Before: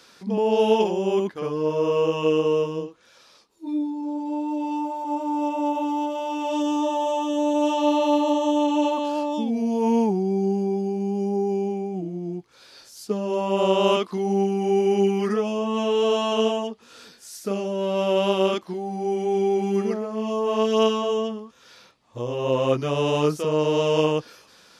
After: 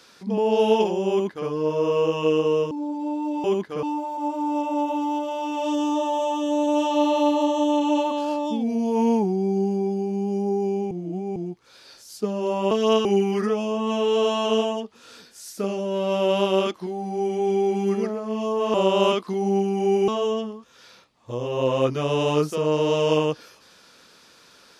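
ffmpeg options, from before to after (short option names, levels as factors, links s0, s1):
-filter_complex "[0:a]asplit=10[s0][s1][s2][s3][s4][s5][s6][s7][s8][s9];[s0]atrim=end=2.712[s10];[s1]atrim=start=3.968:end=4.702[s11];[s2]atrim=start=1.098:end=1.492[s12];[s3]atrim=start=4.698:end=11.782[s13];[s4]atrim=start=11.778:end=12.232,asetpts=PTS-STARTPTS,areverse[s14];[s5]atrim=start=12.228:end=13.582[s15];[s6]atrim=start=20.608:end=20.952[s16];[s7]atrim=start=14.918:end=20.612[s17];[s8]atrim=start=13.578:end=14.922[s18];[s9]atrim=start=20.948[s19];[s10][s11]acrossfade=d=0.004:c1=hsin:c2=hsin[s20];[s20][s12]acrossfade=d=0.004:c1=hsin:c2=hsin[s21];[s21][s13]acrossfade=d=0.004:c1=hsin:c2=hsin[s22];[s22][s14]acrossfade=d=0.004:c1=hsin:c2=hsin[s23];[s23][s15]acrossfade=d=0.004:c1=hsin:c2=hsin[s24];[s24][s16]acrossfade=d=0.004:c1=hsin:c2=hsin[s25];[s25][s17]acrossfade=d=0.004:c1=hsin:c2=hsin[s26];[s26][s18]acrossfade=d=0.004:c1=hsin:c2=hsin[s27];[s27][s19]acrossfade=d=0.004:c1=hsin:c2=hsin"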